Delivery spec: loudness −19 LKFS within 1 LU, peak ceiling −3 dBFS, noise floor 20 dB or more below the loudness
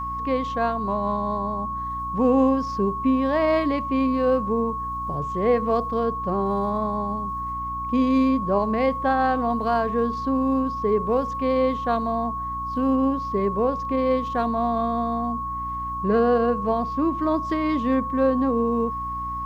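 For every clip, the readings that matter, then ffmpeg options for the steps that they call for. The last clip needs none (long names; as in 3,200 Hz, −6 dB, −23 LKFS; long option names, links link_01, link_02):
mains hum 60 Hz; hum harmonics up to 300 Hz; level of the hum −35 dBFS; interfering tone 1,100 Hz; level of the tone −27 dBFS; integrated loudness −23.5 LKFS; sample peak −9.0 dBFS; target loudness −19.0 LKFS
→ -af "bandreject=frequency=60:width_type=h:width=6,bandreject=frequency=120:width_type=h:width=6,bandreject=frequency=180:width_type=h:width=6,bandreject=frequency=240:width_type=h:width=6,bandreject=frequency=300:width_type=h:width=6"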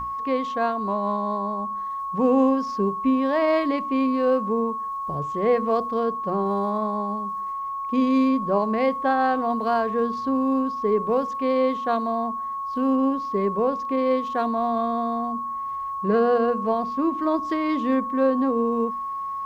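mains hum none found; interfering tone 1,100 Hz; level of the tone −27 dBFS
→ -af "bandreject=frequency=1100:width=30"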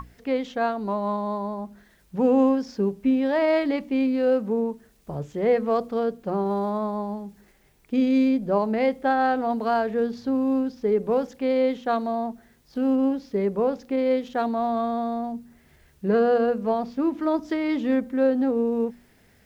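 interfering tone none found; integrated loudness −24.5 LKFS; sample peak −10.5 dBFS; target loudness −19.0 LKFS
→ -af "volume=5.5dB"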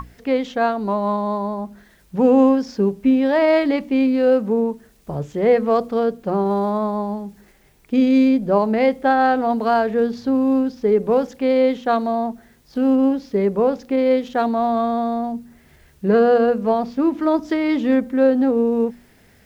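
integrated loudness −19.0 LKFS; sample peak −5.0 dBFS; background noise floor −53 dBFS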